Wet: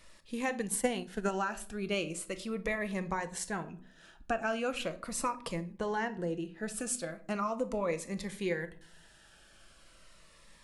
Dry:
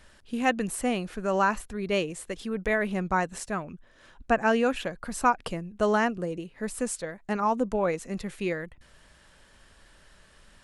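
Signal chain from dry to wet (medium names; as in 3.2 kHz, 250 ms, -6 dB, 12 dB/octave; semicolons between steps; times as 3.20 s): bass shelf 300 Hz -8 dB; compression 6:1, threshold -27 dBFS, peak gain reduction 10 dB; simulated room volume 500 m³, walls furnished, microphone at 0.74 m; 0.59–1.31 s: transient shaper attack +7 dB, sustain -7 dB; 5.76–6.75 s: treble shelf 6.3 kHz -> 9.7 kHz -11.5 dB; Shepard-style phaser falling 0.39 Hz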